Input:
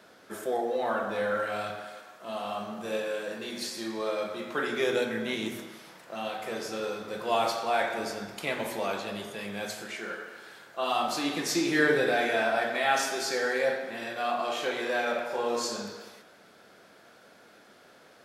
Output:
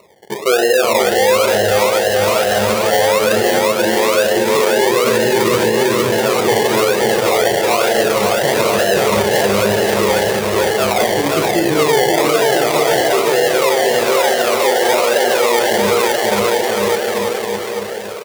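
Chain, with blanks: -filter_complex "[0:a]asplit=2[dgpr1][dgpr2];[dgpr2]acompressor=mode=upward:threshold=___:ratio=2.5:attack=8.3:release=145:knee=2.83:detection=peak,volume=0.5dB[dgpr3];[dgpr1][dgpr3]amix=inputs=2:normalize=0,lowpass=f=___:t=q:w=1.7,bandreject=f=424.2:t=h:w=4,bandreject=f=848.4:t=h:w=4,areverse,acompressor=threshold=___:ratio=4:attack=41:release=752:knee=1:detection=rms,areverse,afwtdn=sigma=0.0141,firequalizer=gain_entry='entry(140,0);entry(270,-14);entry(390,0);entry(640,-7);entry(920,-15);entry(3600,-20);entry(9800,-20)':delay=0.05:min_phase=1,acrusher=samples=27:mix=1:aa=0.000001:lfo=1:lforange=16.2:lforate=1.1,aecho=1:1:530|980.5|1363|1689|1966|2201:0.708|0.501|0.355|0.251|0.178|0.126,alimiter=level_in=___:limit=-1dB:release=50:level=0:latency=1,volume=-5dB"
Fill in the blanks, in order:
-45dB, 660, -29dB, 27.5dB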